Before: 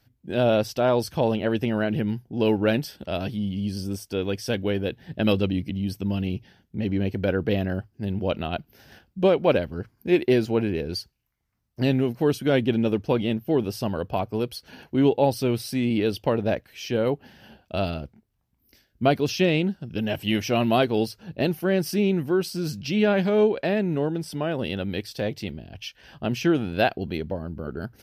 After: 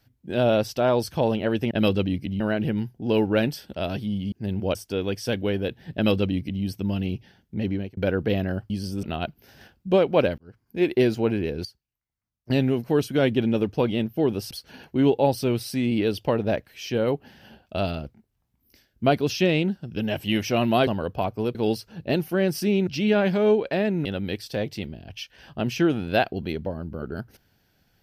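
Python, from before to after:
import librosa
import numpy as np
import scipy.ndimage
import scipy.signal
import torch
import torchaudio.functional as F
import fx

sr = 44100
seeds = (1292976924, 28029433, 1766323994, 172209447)

y = fx.edit(x, sr, fx.swap(start_s=3.63, length_s=0.33, other_s=7.91, other_length_s=0.43),
    fx.duplicate(start_s=5.15, length_s=0.69, to_s=1.71),
    fx.fade_out_span(start_s=6.89, length_s=0.29),
    fx.fade_in_span(start_s=9.69, length_s=0.57),
    fx.clip_gain(start_s=10.96, length_s=0.85, db=-12.0),
    fx.move(start_s=13.82, length_s=0.68, to_s=20.86),
    fx.cut(start_s=22.18, length_s=0.61),
    fx.cut(start_s=23.97, length_s=0.73), tone=tone)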